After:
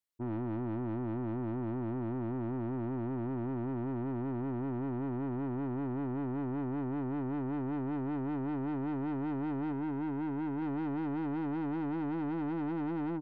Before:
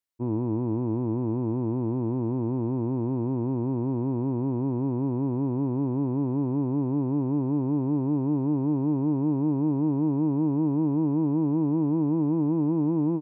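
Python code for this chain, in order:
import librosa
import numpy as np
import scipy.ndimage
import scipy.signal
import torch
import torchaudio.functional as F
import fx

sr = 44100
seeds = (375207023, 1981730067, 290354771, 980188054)

y = fx.tilt_shelf(x, sr, db=-3.5, hz=650.0, at=(9.72, 10.62))
y = 10.0 ** (-29.5 / 20.0) * np.tanh(y / 10.0 ** (-29.5 / 20.0))
y = y * librosa.db_to_amplitude(-3.0)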